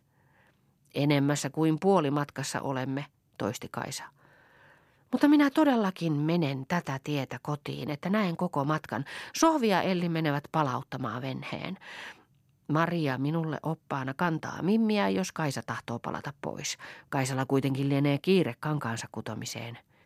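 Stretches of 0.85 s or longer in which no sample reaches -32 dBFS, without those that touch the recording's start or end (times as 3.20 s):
3.98–5.13 s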